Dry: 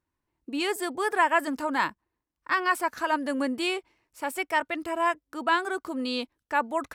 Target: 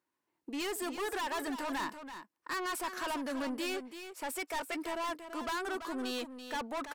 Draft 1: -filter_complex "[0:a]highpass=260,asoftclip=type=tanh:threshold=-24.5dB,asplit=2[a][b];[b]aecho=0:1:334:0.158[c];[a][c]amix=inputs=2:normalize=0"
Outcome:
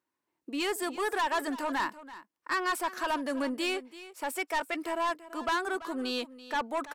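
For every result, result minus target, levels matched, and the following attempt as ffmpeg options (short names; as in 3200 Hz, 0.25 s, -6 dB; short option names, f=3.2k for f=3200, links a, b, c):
echo-to-direct -6 dB; soft clip: distortion -5 dB
-filter_complex "[0:a]highpass=260,asoftclip=type=tanh:threshold=-24.5dB,asplit=2[a][b];[b]aecho=0:1:334:0.316[c];[a][c]amix=inputs=2:normalize=0"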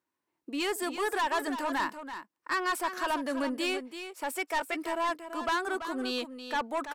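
soft clip: distortion -5 dB
-filter_complex "[0:a]highpass=260,asoftclip=type=tanh:threshold=-33.5dB,asplit=2[a][b];[b]aecho=0:1:334:0.316[c];[a][c]amix=inputs=2:normalize=0"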